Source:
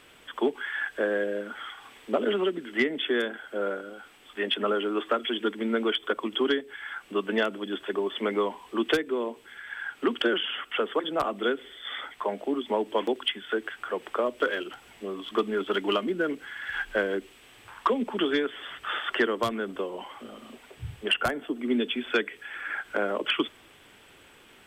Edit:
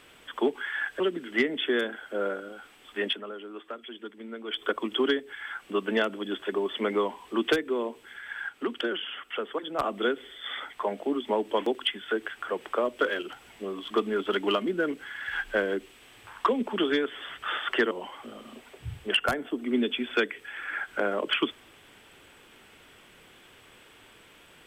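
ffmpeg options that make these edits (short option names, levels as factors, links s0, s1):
-filter_complex "[0:a]asplit=7[s0][s1][s2][s3][s4][s5][s6];[s0]atrim=end=1.002[s7];[s1]atrim=start=2.408:end=4.62,asetpts=PTS-STARTPTS,afade=t=out:st=2.082:d=0.13:silence=0.223872[s8];[s2]atrim=start=4.62:end=5.88,asetpts=PTS-STARTPTS,volume=0.224[s9];[s3]atrim=start=5.88:end=9.902,asetpts=PTS-STARTPTS,afade=t=in:d=0.13:silence=0.223872[s10];[s4]atrim=start=9.898:end=11.202,asetpts=PTS-STARTPTS,volume=0.562[s11];[s5]atrim=start=11.198:end=19.322[s12];[s6]atrim=start=19.878[s13];[s8][s9][s10]concat=n=3:v=0:a=1[s14];[s7][s14]acrossfade=d=0.004:c1=hsin:c2=hsin[s15];[s15][s11]acrossfade=d=0.004:c1=hsin:c2=hsin[s16];[s16][s12]acrossfade=d=0.004:c1=hsin:c2=hsin[s17];[s17][s13]acrossfade=d=0.004:c1=hsin:c2=hsin"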